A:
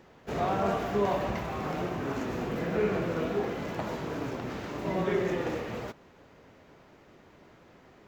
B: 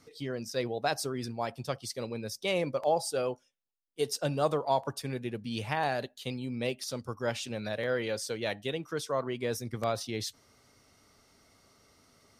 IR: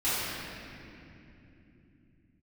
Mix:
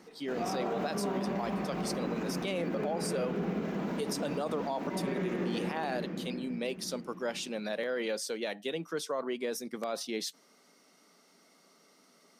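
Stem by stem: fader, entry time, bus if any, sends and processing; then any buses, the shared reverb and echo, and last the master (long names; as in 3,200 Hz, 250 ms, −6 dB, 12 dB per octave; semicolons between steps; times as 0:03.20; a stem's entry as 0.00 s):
−4.0 dB, 0.00 s, send −14 dB, low shelf with overshoot 140 Hz −9.5 dB, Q 3; automatic ducking −7 dB, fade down 0.25 s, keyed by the second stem
+1.0 dB, 0.00 s, no send, elliptic high-pass filter 170 Hz, stop band 40 dB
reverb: on, RT60 3.0 s, pre-delay 3 ms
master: brickwall limiter −24.5 dBFS, peak gain reduction 10.5 dB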